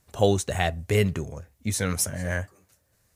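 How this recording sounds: noise floor -68 dBFS; spectral tilt -4.5 dB/oct

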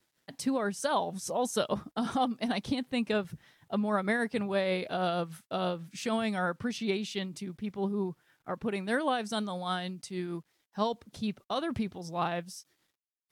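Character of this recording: tremolo triangle 6.4 Hz, depth 45%; a quantiser's noise floor 12-bit, dither none; Vorbis

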